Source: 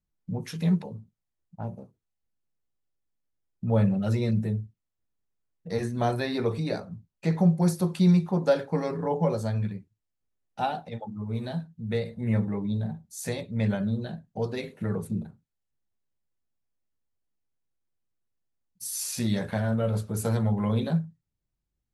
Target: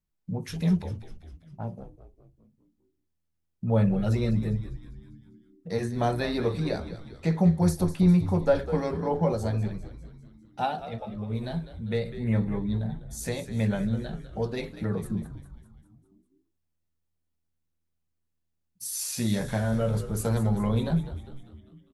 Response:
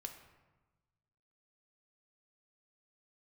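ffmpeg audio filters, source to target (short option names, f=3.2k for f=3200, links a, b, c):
-filter_complex "[0:a]asettb=1/sr,asplit=3[a][b][c];[a]atrim=end=7.834[d];[b]atrim=start=7.83:end=8.55,asetpts=PTS-STARTPTS,afade=t=in:d=0.004:c=qsin,afade=t=out:st=0.716:d=0.004:c=qsin,acrossover=split=2800[e][f];[f]acompressor=threshold=-51dB:ratio=4:attack=1:release=60[g];[e][g]amix=inputs=2:normalize=0[h];[c]atrim=start=8.546[i];[d][h]acrossfade=d=0.004:c1=hsin:c2=qsin[j];[j][i]acrossfade=d=0.004:c1=qsin:c2=hsin,asplit=7[k][l][m][n][o][p][q];[l]adelay=200,afreqshift=-82,volume=-12.5dB[r];[m]adelay=400,afreqshift=-164,volume=-17.7dB[s];[n]adelay=600,afreqshift=-246,volume=-22.9dB[t];[o]adelay=800,afreqshift=-328,volume=-28.1dB[u];[p]adelay=1000,afreqshift=-410,volume=-33.3dB[v];[q]adelay=1200,afreqshift=-492,volume=-38.5dB[w];[k][r][s][t][u][v][w]amix=inputs=7:normalize=0"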